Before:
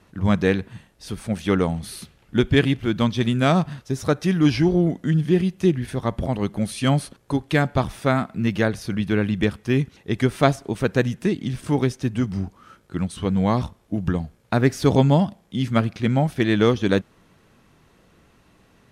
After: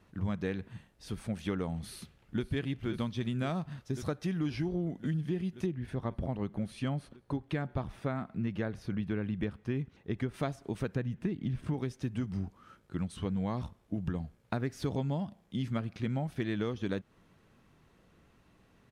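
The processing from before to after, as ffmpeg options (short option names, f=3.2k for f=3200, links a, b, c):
-filter_complex "[0:a]asplit=2[a][b];[b]afade=t=in:st=1.87:d=0.01,afade=t=out:st=2.44:d=0.01,aecho=0:1:530|1060|1590|2120|2650|3180|3710|4240|4770|5300|5830|6360:0.266073|0.199554|0.149666|0.112249|0.084187|0.0631403|0.0473552|0.0355164|0.0266373|0.019978|0.0149835|0.0112376[c];[a][c]amix=inputs=2:normalize=0,asettb=1/sr,asplit=3[d][e][f];[d]atrim=end=5.664[g];[e]atrim=start=5.66:end=10.34,asetpts=PTS-STARTPTS,afade=t=in:d=0.004:c=qsin,afade=t=out:st=4.676:d=0.004:c=qsin,highshelf=f=3.8k:g=-10.5[h];[f]atrim=start=10.336[i];[g][h]acrossfade=d=0.004:c1=hsin:c2=qsin[j];[j][i]acrossfade=d=0.004:c1=qsin:c2=hsin,asettb=1/sr,asplit=3[k][l][m];[k]atrim=end=10.954[n];[l]atrim=start=10.95:end=11.74,asetpts=PTS-STARTPTS,afade=t=in:d=0.004:c=qsin,afade=t=out:st=0.786:d=0.004:c=qsin,bass=f=250:g=5,treble=f=4k:g=-10[o];[m]atrim=start=11.736[p];[n][o]acrossfade=d=0.004:c1=hsin:c2=qsin[q];[q][p]acrossfade=d=0.004:c1=qsin:c2=hsin,bass=f=250:g=2,treble=f=4k:g=-3,acompressor=threshold=-21dB:ratio=6,volume=-8.5dB"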